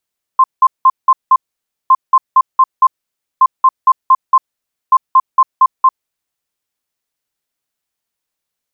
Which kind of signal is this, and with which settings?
beeps in groups sine 1,050 Hz, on 0.05 s, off 0.18 s, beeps 5, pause 0.54 s, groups 4, −3.5 dBFS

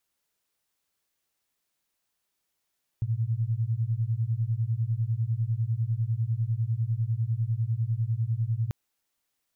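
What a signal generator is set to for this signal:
two tones that beat 109 Hz, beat 10 Hz, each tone −27.5 dBFS 5.69 s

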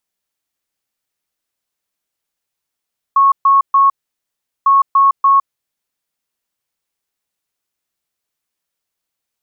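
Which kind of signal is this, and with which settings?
beeps in groups sine 1,100 Hz, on 0.16 s, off 0.13 s, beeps 3, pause 0.76 s, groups 2, −6.5 dBFS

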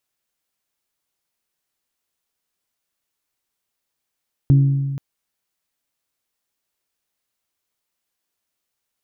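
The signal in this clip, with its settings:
struck glass bell, length 0.48 s, lowest mode 138 Hz, decay 1.76 s, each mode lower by 11 dB, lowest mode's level −8 dB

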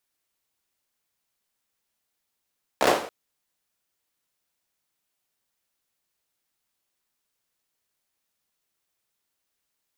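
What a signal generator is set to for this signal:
synth clap length 0.28 s, bursts 5, apart 15 ms, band 560 Hz, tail 0.50 s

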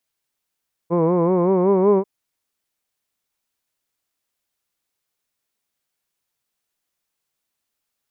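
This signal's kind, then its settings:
vowel by formant synthesis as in hood, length 1.14 s, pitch 165 Hz, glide +3.5 semitones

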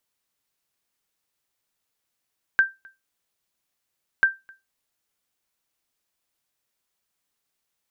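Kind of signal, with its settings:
ping with an echo 1,570 Hz, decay 0.21 s, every 1.64 s, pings 2, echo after 0.26 s, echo −29 dB −9.5 dBFS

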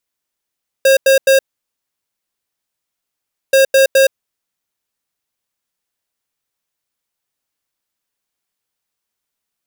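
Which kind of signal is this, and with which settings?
beeps in groups square 538 Hz, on 0.12 s, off 0.09 s, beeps 3, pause 2.14 s, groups 2, −9 dBFS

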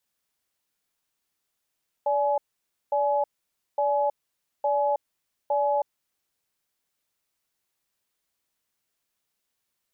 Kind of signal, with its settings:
tone pair in a cadence 579 Hz, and 845 Hz, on 0.32 s, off 0.54 s, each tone −23.5 dBFS 3.93 s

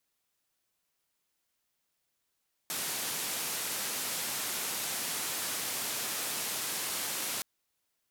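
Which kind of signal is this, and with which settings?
band-limited noise 140–14,000 Hz, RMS −35 dBFS 4.72 s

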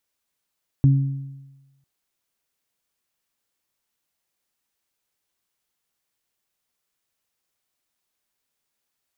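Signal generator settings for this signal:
harmonic partials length 1.00 s, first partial 137 Hz, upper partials −10.5 dB, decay 1.12 s, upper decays 0.88 s, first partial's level −10 dB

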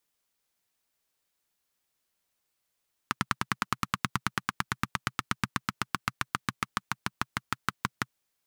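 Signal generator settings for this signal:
pulse-train model of a single-cylinder engine, changing speed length 4.98 s, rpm 1,200, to 700, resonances 130/190/1,200 Hz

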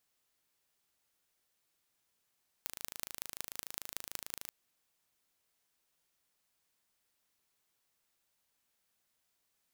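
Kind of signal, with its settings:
impulse train 26.8 per second, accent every 5, −9.5 dBFS 1.85 s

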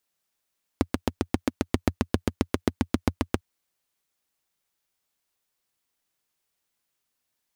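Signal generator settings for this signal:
pulse-train model of a single-cylinder engine, steady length 2.60 s, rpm 900, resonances 88/240 Hz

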